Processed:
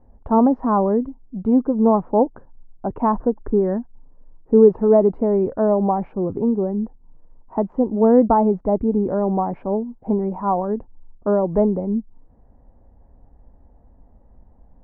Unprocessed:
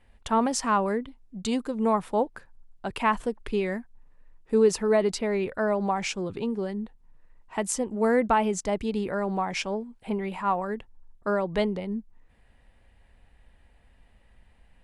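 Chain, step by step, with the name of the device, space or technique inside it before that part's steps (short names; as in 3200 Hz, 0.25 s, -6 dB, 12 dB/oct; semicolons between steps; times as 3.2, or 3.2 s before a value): under water (LPF 920 Hz 24 dB/oct; bell 270 Hz +5 dB 0.44 oct); 3.2–3.79 resonant high shelf 2200 Hz -8 dB, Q 3; gain +8 dB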